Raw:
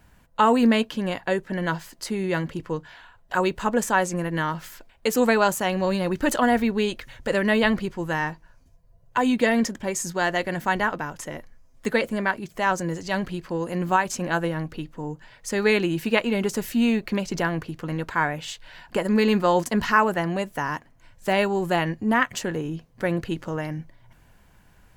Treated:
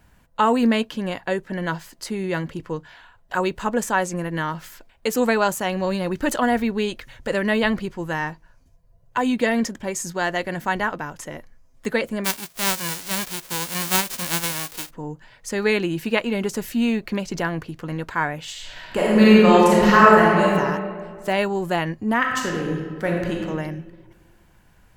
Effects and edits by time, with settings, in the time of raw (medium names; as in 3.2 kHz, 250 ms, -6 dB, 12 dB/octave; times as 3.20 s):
12.24–14.89 s: formants flattened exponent 0.1
18.51–20.50 s: reverb throw, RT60 1.9 s, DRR -6.5 dB
22.18–23.36 s: reverb throw, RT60 1.6 s, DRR -0.5 dB